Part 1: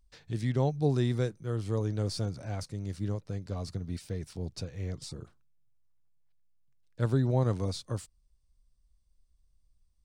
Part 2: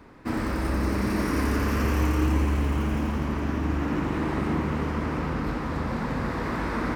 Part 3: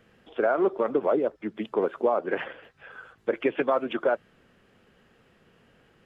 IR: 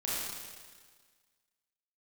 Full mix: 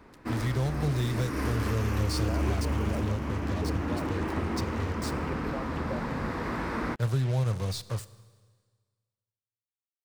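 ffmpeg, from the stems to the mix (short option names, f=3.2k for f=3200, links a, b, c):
-filter_complex "[0:a]equalizer=f=280:t=o:w=0.86:g=-11,acrossover=split=200|3000[a][b][c];[b]acompressor=threshold=-36dB:ratio=6[d];[a][d][c]amix=inputs=3:normalize=0,acrusher=bits=6:mix=0:aa=0.5,volume=2.5dB,asplit=3[e][f][g];[f]volume=-21dB[h];[1:a]bandreject=f=50:t=h:w=6,bandreject=f=100:t=h:w=6,bandreject=f=150:t=h:w=6,bandreject=f=200:t=h:w=6,bandreject=f=250:t=h:w=6,bandreject=f=300:t=h:w=6,volume=-3dB[i];[2:a]adelay=1850,volume=-16dB[j];[g]apad=whole_len=306855[k];[i][k]sidechaincompress=threshold=-31dB:ratio=8:attack=21:release=401[l];[3:a]atrim=start_sample=2205[m];[h][m]afir=irnorm=-1:irlink=0[n];[e][l][j][n]amix=inputs=4:normalize=0"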